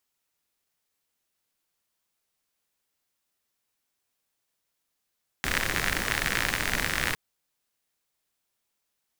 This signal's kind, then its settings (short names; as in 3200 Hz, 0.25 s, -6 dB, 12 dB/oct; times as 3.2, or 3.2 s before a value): rain from filtered ticks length 1.71 s, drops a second 68, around 1800 Hz, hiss -2 dB